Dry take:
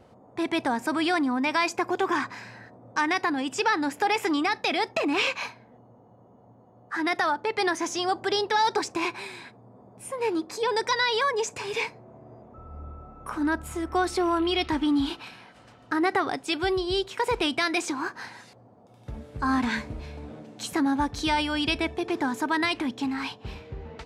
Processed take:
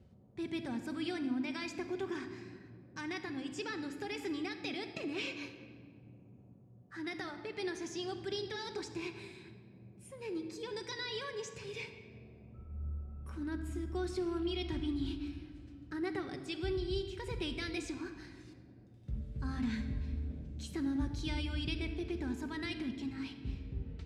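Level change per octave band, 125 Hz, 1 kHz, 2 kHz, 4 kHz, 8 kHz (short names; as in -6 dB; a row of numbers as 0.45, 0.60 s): 0.0, -22.0, -16.0, -13.5, -14.5 dB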